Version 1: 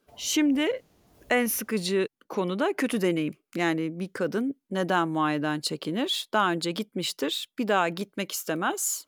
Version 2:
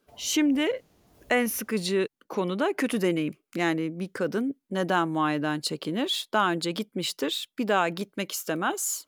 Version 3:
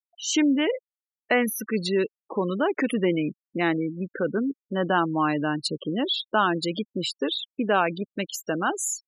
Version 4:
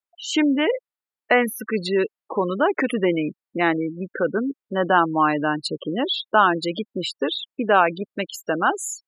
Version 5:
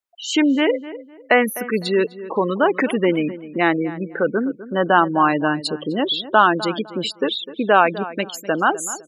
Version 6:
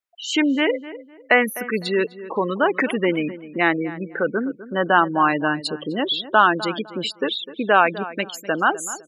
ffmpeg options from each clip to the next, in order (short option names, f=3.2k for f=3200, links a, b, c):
-af "deesser=0.4"
-af "afftfilt=real='re*gte(hypot(re,im),0.0355)':imag='im*gte(hypot(re,im),0.0355)':win_size=1024:overlap=0.75,volume=2dB"
-af "equalizer=f=1k:w=0.37:g=8.5,bandreject=f=5.9k:w=6.2,volume=-2dB"
-filter_complex "[0:a]asplit=2[a][b];[b]adelay=253,lowpass=f=1.9k:p=1,volume=-15dB,asplit=2[c][d];[d]adelay=253,lowpass=f=1.9k:p=1,volume=0.28,asplit=2[e][f];[f]adelay=253,lowpass=f=1.9k:p=1,volume=0.28[g];[a][c][e][g]amix=inputs=4:normalize=0,volume=2.5dB"
-af "equalizer=f=2k:w=0.97:g=4.5,volume=-3dB"